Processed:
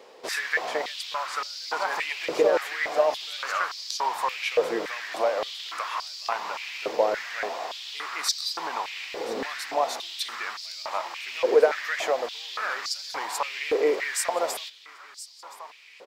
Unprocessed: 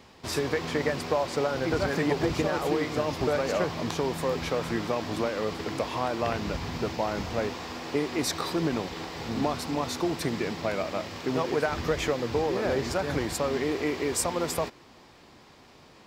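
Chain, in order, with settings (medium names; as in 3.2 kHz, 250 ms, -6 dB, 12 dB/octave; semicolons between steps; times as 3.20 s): feedback delay 1022 ms, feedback 40%, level -17 dB; step-sequenced high-pass 3.5 Hz 480–4700 Hz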